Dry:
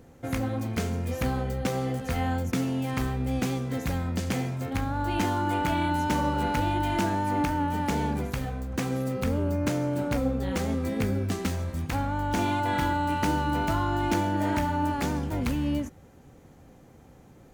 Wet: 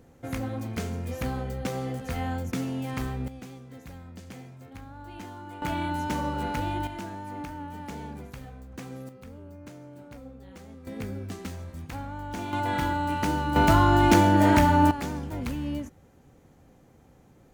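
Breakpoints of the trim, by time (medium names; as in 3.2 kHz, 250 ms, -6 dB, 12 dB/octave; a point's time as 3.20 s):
-3 dB
from 3.28 s -15 dB
from 5.62 s -3.5 dB
from 6.87 s -11 dB
from 9.09 s -18 dB
from 10.87 s -8 dB
from 12.53 s -1 dB
from 13.56 s +7.5 dB
from 14.91 s -4 dB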